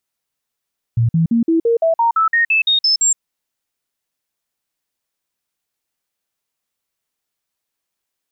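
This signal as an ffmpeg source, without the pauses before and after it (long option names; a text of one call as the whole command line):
ffmpeg -f lavfi -i "aevalsrc='0.282*clip(min(mod(t,0.17),0.12-mod(t,0.17))/0.005,0,1)*sin(2*PI*116*pow(2,floor(t/0.17)/2)*mod(t,0.17))':duration=2.21:sample_rate=44100" out.wav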